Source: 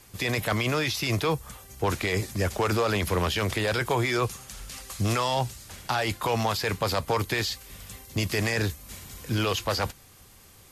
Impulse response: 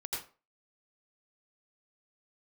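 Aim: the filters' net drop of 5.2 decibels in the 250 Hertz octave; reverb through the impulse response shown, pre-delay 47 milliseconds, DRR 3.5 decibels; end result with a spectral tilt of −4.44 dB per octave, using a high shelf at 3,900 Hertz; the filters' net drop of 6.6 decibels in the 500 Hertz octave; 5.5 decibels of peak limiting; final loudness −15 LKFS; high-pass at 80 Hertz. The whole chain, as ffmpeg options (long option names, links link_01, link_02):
-filter_complex "[0:a]highpass=80,equalizer=frequency=250:width_type=o:gain=-5,equalizer=frequency=500:width_type=o:gain=-6.5,highshelf=frequency=3900:gain=-6.5,alimiter=limit=-21dB:level=0:latency=1,asplit=2[link_01][link_02];[1:a]atrim=start_sample=2205,adelay=47[link_03];[link_02][link_03]afir=irnorm=-1:irlink=0,volume=-5dB[link_04];[link_01][link_04]amix=inputs=2:normalize=0,volume=16dB"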